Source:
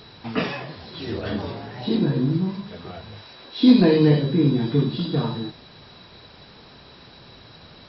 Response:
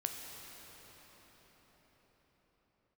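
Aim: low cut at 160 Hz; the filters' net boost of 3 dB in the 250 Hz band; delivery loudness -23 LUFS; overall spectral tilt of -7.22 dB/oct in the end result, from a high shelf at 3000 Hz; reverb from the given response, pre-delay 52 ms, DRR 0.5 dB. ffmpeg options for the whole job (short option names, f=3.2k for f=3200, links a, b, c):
-filter_complex "[0:a]highpass=160,equalizer=f=250:t=o:g=4.5,highshelf=f=3k:g=-5.5,asplit=2[a][b];[1:a]atrim=start_sample=2205,adelay=52[c];[b][c]afir=irnorm=-1:irlink=0,volume=-2dB[d];[a][d]amix=inputs=2:normalize=0,volume=-6dB"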